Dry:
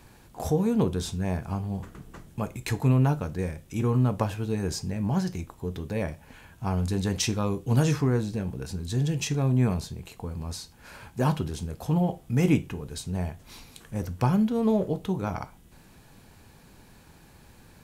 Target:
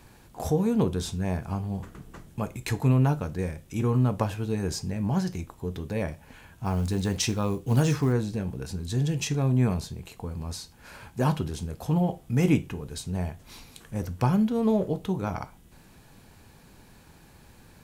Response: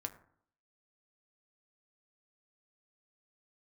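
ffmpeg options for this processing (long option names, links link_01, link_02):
-filter_complex "[0:a]asettb=1/sr,asplit=3[link_01][link_02][link_03];[link_01]atrim=end=6.654[link_04];[link_02]atrim=start=6.65:end=8.13,asetpts=PTS-STARTPTS,afade=type=in:duration=0.004:curve=qsin,afade=type=out:start_time=1.476:duration=0.004:curve=qsin,acrusher=bits=8:mode=log:mix=0:aa=0.000001[link_05];[link_03]atrim=start=8.126[link_06];[link_04][link_05]acrossfade=duration=0.004:curve1=hsin:curve2=qsin[link_07];[link_07][link_06]acrossfade=duration=0.004:curve1=qsin:curve2=hsin"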